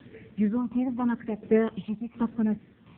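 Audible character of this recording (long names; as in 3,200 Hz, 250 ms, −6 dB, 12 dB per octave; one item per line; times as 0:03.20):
phaser sweep stages 8, 0.89 Hz, lowest notch 450–1,100 Hz
a quantiser's noise floor 10 bits, dither none
tremolo saw down 1.4 Hz, depth 65%
AMR narrowband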